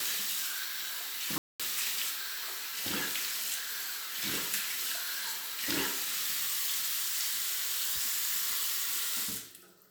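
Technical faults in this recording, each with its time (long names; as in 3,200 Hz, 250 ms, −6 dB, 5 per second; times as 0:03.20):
0:01.38–0:01.60: drop-out 216 ms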